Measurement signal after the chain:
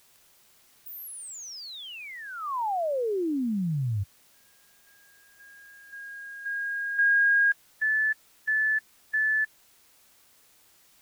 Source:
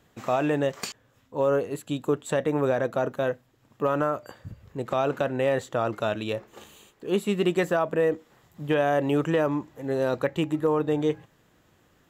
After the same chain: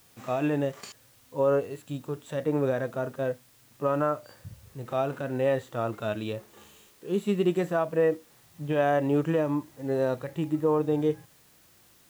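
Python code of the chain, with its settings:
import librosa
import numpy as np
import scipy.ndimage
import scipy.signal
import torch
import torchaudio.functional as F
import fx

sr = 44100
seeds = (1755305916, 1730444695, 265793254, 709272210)

y = fx.hpss(x, sr, part='percussive', gain_db=-13)
y = fx.quant_dither(y, sr, seeds[0], bits=10, dither='triangular')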